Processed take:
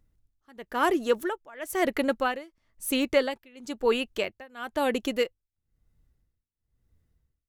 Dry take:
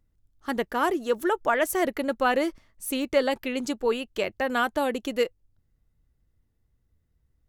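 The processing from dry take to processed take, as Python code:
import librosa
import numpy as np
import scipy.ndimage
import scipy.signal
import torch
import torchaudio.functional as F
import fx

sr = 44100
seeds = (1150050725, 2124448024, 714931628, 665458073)

y = fx.dynamic_eq(x, sr, hz=2500.0, q=1.0, threshold_db=-38.0, ratio=4.0, max_db=3)
y = fx.wow_flutter(y, sr, seeds[0], rate_hz=2.1, depth_cents=17.0)
y = y * (1.0 - 0.96 / 2.0 + 0.96 / 2.0 * np.cos(2.0 * np.pi * 1.0 * (np.arange(len(y)) / sr)))
y = y * librosa.db_to_amplitude(2.0)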